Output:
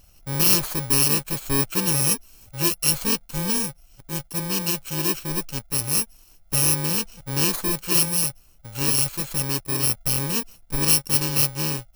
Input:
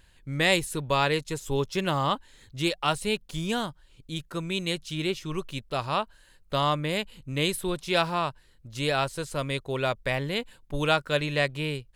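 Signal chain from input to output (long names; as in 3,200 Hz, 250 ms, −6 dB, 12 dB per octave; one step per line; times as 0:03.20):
samples in bit-reversed order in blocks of 64 samples
level +5 dB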